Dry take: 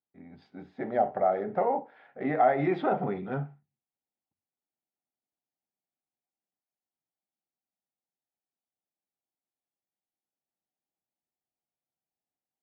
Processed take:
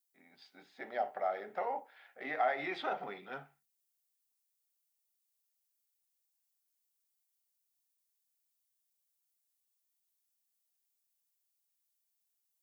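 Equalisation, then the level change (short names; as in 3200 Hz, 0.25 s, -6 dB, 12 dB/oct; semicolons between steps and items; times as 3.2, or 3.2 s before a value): HPF 360 Hz 6 dB/oct; tilt +3.5 dB/oct; high shelf 2700 Hz +9 dB; -7.0 dB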